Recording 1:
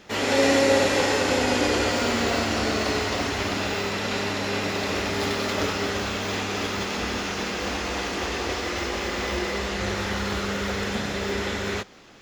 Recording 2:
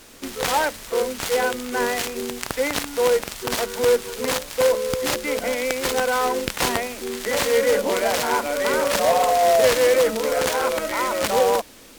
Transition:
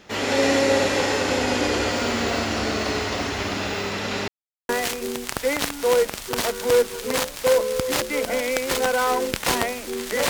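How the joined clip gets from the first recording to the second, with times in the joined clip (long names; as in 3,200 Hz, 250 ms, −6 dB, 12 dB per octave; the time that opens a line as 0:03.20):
recording 1
0:04.28–0:04.69: silence
0:04.69: continue with recording 2 from 0:01.83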